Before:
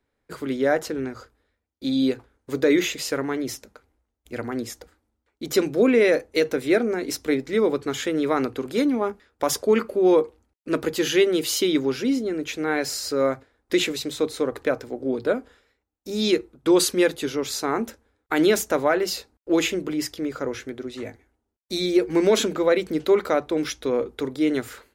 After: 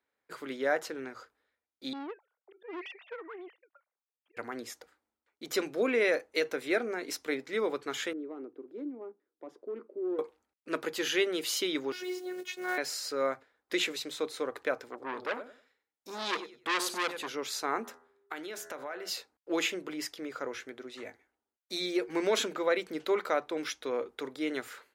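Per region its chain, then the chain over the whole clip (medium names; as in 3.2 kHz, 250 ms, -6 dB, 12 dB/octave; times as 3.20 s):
1.93–4.37 s: formants replaced by sine waves + slow attack 275 ms + valve stage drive 26 dB, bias 0.35
8.13–10.19 s: hard clipper -15.5 dBFS + band-pass filter 330 Hz, Q 3.8
11.92–12.78 s: block-companded coder 5-bit + robot voice 363 Hz
14.88–17.29 s: feedback delay 95 ms, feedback 23%, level -12.5 dB + transformer saturation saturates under 2.6 kHz
17.83–19.08 s: de-hum 82.79 Hz, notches 24 + compression 5:1, threshold -29 dBFS + whistle 400 Hz -57 dBFS
whole clip: high-pass 1.3 kHz 6 dB/octave; treble shelf 3 kHz -9 dB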